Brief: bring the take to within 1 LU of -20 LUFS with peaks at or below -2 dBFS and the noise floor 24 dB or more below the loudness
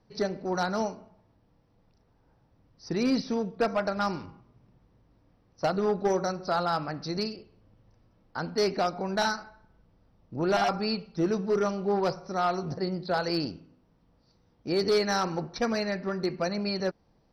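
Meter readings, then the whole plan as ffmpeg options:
loudness -29.0 LUFS; peak -17.5 dBFS; loudness target -20.0 LUFS
-> -af "volume=9dB"

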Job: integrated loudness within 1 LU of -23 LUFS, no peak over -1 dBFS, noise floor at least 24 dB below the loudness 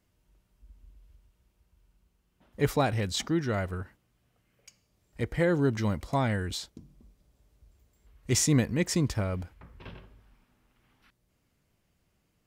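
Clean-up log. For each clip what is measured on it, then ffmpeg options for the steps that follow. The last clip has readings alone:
loudness -28.5 LUFS; peak -13.0 dBFS; loudness target -23.0 LUFS
-> -af "volume=5.5dB"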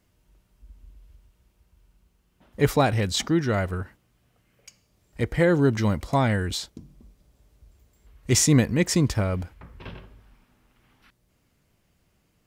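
loudness -23.0 LUFS; peak -7.5 dBFS; noise floor -68 dBFS

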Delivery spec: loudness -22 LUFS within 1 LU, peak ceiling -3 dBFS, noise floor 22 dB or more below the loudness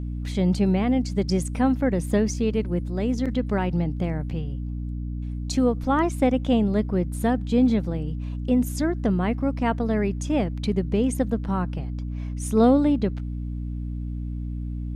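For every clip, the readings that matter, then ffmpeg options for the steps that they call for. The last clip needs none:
hum 60 Hz; harmonics up to 300 Hz; hum level -28 dBFS; loudness -24.5 LUFS; peak -7.0 dBFS; loudness target -22.0 LUFS
-> -af "bandreject=f=60:t=h:w=6,bandreject=f=120:t=h:w=6,bandreject=f=180:t=h:w=6,bandreject=f=240:t=h:w=6,bandreject=f=300:t=h:w=6"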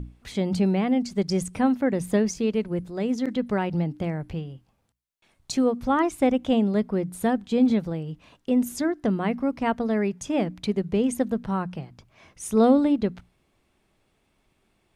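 hum none; loudness -25.0 LUFS; peak -7.5 dBFS; loudness target -22.0 LUFS
-> -af "volume=3dB"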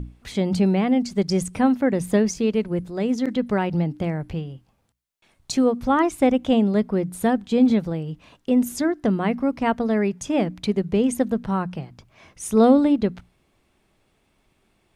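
loudness -22.0 LUFS; peak -4.5 dBFS; noise floor -67 dBFS

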